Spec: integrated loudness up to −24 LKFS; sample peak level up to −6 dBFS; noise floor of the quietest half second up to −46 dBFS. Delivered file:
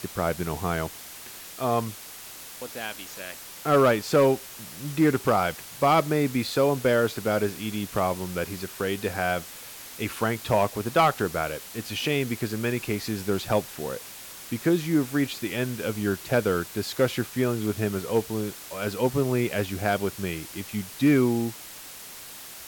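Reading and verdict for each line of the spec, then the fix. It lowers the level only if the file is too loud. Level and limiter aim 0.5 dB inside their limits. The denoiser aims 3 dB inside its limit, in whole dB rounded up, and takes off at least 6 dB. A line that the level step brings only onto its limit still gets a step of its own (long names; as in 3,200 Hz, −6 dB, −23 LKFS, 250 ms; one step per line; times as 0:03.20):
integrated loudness −26.0 LKFS: in spec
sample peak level −11.5 dBFS: in spec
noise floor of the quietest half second −42 dBFS: out of spec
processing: broadband denoise 7 dB, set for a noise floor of −42 dBFS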